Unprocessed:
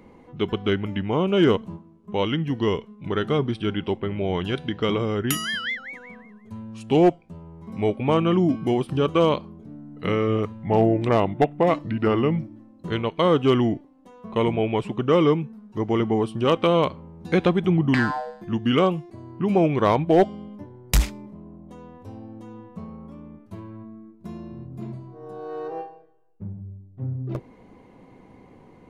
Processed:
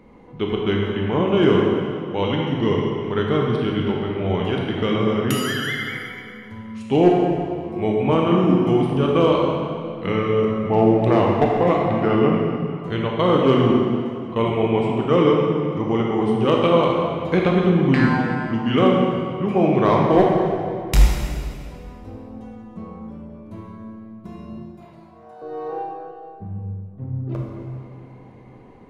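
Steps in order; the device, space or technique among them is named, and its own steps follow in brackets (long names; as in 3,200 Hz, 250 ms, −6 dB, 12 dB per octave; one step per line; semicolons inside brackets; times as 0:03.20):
0:24.57–0:25.42: inverse Chebyshev high-pass filter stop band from 170 Hz, stop band 60 dB
swimming-pool hall (convolution reverb RT60 2.4 s, pre-delay 19 ms, DRR −1.5 dB; high-shelf EQ 5,000 Hz −6.5 dB)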